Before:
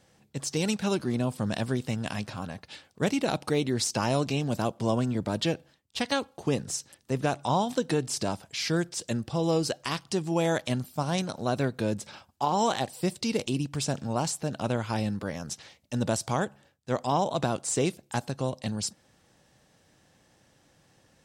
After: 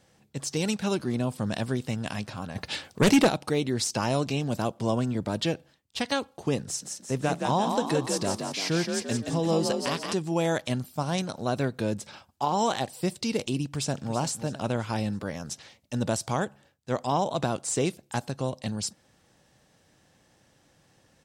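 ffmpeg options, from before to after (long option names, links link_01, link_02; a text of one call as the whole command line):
ffmpeg -i in.wav -filter_complex "[0:a]asplit=3[link_01][link_02][link_03];[link_01]afade=type=out:start_time=2.55:duration=0.02[link_04];[link_02]aeval=exprs='0.2*sin(PI/2*2.51*val(0)/0.2)':channel_layout=same,afade=type=in:start_time=2.55:duration=0.02,afade=type=out:start_time=3.27:duration=0.02[link_05];[link_03]afade=type=in:start_time=3.27:duration=0.02[link_06];[link_04][link_05][link_06]amix=inputs=3:normalize=0,asettb=1/sr,asplit=3[link_07][link_08][link_09];[link_07]atrim=end=6.644[link_10];[link_08]atrim=start=6.64:end=10.14,asetpts=PTS-STARTPTS,afade=type=in:duration=0.004:curve=qsin,afade=type=out:start_time=3.496:duration=0.004:curve=qsin,asplit=7[link_11][link_12][link_13][link_14][link_15][link_16][link_17];[link_12]adelay=172,afreqshift=42,volume=-4.5dB[link_18];[link_13]adelay=344,afreqshift=84,volume=-10.9dB[link_19];[link_14]adelay=516,afreqshift=126,volume=-17.3dB[link_20];[link_15]adelay=688,afreqshift=168,volume=-23.6dB[link_21];[link_16]adelay=860,afreqshift=210,volume=-30dB[link_22];[link_17]adelay=1032,afreqshift=252,volume=-36.4dB[link_23];[link_11][link_18][link_19][link_20][link_21][link_22][link_23]amix=inputs=7:normalize=0,atrim=end_sample=154350[link_24];[link_09]atrim=start=10.136[link_25];[link_10][link_24]acrossfade=duration=0.004:curve1=hsin:curve2=qsin[link_26];[link_26][link_25]acrossfade=duration=0.004:curve1=qsin:curve2=hsin,asplit=2[link_27][link_28];[link_28]afade=type=in:start_time=13.67:duration=0.01,afade=type=out:start_time=14.14:duration=0.01,aecho=0:1:330|660|990|1320|1650:0.266073|0.119733|0.0538797|0.0242459|0.0109106[link_29];[link_27][link_29]amix=inputs=2:normalize=0" out.wav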